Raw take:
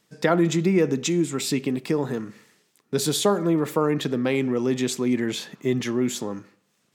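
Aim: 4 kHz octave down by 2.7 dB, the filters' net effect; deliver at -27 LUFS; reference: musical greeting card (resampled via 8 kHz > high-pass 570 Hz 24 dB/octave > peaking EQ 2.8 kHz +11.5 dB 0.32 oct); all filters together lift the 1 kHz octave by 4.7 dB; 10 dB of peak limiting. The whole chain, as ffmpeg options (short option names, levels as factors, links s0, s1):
-af "equalizer=f=1000:t=o:g=6.5,equalizer=f=4000:t=o:g=-8,alimiter=limit=0.2:level=0:latency=1,aresample=8000,aresample=44100,highpass=f=570:w=0.5412,highpass=f=570:w=1.3066,equalizer=f=2800:t=o:w=0.32:g=11.5,volume=2"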